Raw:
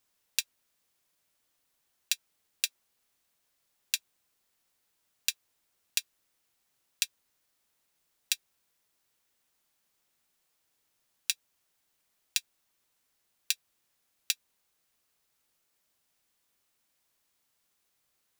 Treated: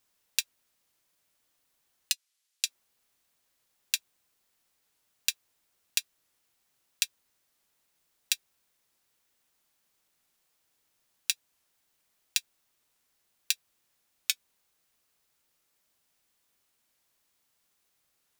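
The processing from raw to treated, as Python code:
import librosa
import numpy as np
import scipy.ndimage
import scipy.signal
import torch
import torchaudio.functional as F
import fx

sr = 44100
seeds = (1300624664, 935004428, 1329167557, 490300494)

y = fx.bandpass_q(x, sr, hz=5800.0, q=0.58, at=(2.12, 2.66), fade=0.02)
y = fx.record_warp(y, sr, rpm=45.0, depth_cents=100.0)
y = y * 10.0 ** (1.5 / 20.0)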